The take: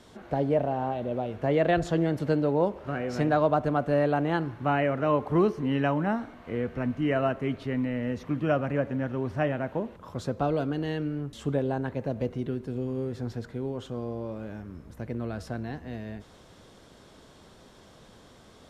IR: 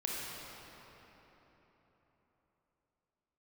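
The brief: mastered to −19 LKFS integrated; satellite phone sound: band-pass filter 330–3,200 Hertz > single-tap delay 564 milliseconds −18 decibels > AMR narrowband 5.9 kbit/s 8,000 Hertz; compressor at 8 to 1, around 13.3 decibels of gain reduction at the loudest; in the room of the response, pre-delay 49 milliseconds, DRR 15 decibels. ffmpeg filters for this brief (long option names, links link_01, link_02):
-filter_complex "[0:a]acompressor=threshold=-33dB:ratio=8,asplit=2[link_01][link_02];[1:a]atrim=start_sample=2205,adelay=49[link_03];[link_02][link_03]afir=irnorm=-1:irlink=0,volume=-19dB[link_04];[link_01][link_04]amix=inputs=2:normalize=0,highpass=330,lowpass=3200,aecho=1:1:564:0.126,volume=23dB" -ar 8000 -c:a libopencore_amrnb -b:a 5900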